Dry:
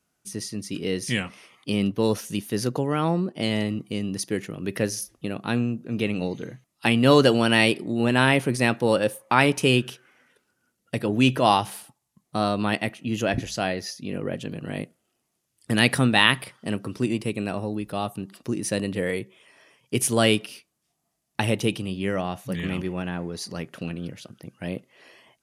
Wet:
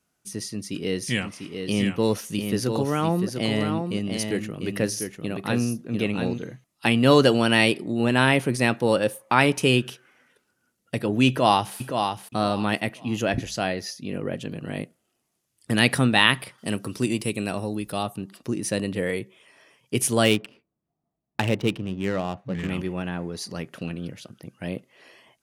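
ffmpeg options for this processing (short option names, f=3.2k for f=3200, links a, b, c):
-filter_complex "[0:a]asplit=3[a][b][c];[a]afade=t=out:st=1.21:d=0.02[d];[b]aecho=1:1:697:0.501,afade=t=in:st=1.21:d=0.02,afade=t=out:st=6.37:d=0.02[e];[c]afade=t=in:st=6.37:d=0.02[f];[d][e][f]amix=inputs=3:normalize=0,asplit=2[g][h];[h]afade=t=in:st=11.28:d=0.01,afade=t=out:st=11.76:d=0.01,aecho=0:1:520|1040|1560:0.501187|0.125297|0.0313242[i];[g][i]amix=inputs=2:normalize=0,asettb=1/sr,asplit=3[j][k][l];[j]atrim=end=16.584[m];[k]atrim=start=16.58:end=18.03,asetpts=PTS-STARTPTS,afade=t=in:d=0.004:c=qsin,afade=t=out:st=1.446:d=0.004:c=qsin,highshelf=f=4.3k:g=10.5[n];[l]atrim=start=18.026[o];[m][n]acrossfade=d=0.004:c1=hsin:c2=qsin[p];[p][o]acrossfade=d=0.004:c1=qsin:c2=hsin,asettb=1/sr,asplit=3[q][r][s];[q]atrim=end=20.254[t];[r]atrim=start=20.25:end=22.7,asetpts=PTS-STARTPTS,afade=t=in:d=0.004:c=qsin,afade=t=out:st=2.446:d=0.004:c=qsin,adynamicsmooth=sensitivity=4.5:basefreq=850[u];[s]atrim=start=22.696[v];[t][u]acrossfade=d=0.004:c1=hsin:c2=qsin[w];[w][v]acrossfade=d=0.004:c1=qsin:c2=hsin"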